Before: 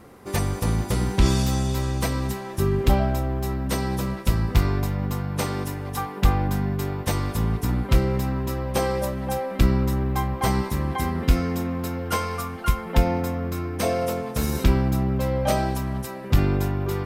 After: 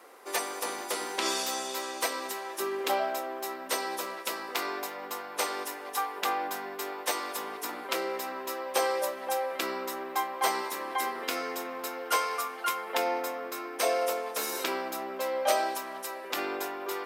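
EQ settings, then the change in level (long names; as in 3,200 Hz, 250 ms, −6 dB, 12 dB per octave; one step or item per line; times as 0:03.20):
Bessel high-pass filter 570 Hz, order 6
0.0 dB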